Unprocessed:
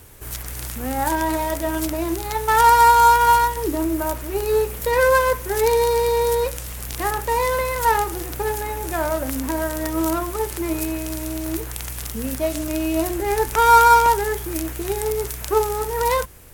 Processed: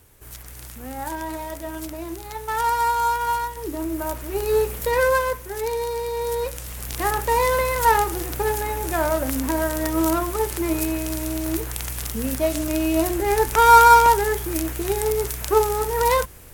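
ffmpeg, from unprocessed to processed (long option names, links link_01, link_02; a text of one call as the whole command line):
ffmpeg -i in.wav -af "volume=9dB,afade=type=in:start_time=3.51:duration=1.19:silence=0.375837,afade=type=out:start_time=4.7:duration=0.8:silence=0.398107,afade=type=in:start_time=6.12:duration=1.06:silence=0.354813" out.wav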